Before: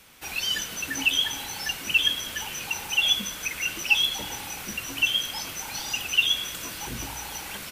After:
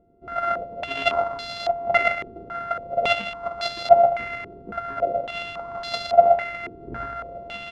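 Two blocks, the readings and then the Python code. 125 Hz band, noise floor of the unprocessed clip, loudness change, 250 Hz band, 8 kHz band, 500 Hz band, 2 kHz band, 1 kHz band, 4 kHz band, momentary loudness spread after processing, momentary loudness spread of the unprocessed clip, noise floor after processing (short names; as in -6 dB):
+0.5 dB, -38 dBFS, +2.0 dB, -0.5 dB, under -20 dB, +24.5 dB, -2.0 dB, +17.5 dB, -10.0 dB, 17 LU, 12 LU, -43 dBFS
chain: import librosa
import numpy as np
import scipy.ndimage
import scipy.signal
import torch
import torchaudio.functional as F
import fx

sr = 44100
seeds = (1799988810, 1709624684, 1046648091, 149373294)

y = np.r_[np.sort(x[:len(x) // 64 * 64].reshape(-1, 64), axis=1).ravel(), x[len(x) // 64 * 64:]]
y = fx.filter_held_lowpass(y, sr, hz=3.6, low_hz=380.0, high_hz=4200.0)
y = y * 10.0 ** (-1.0 / 20.0)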